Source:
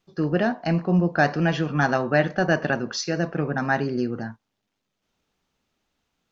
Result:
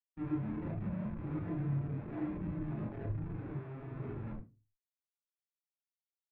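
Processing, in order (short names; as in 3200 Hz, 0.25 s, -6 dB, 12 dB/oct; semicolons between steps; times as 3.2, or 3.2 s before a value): median filter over 41 samples; gate -35 dBFS, range -23 dB; comb 1 ms, depth 32%; level quantiser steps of 17 dB; three bands offset in time lows, highs, mids 60/230 ms, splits 420/5000 Hz; grains 0.163 s, grains 16/s; metallic resonator 62 Hz, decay 0.62 s, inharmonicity 0.03; Schmitt trigger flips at -52 dBFS; air absorption 480 m; reverb RT60 0.40 s, pre-delay 22 ms, DRR 2.5 dB; spectral expander 1.5:1; gain +17 dB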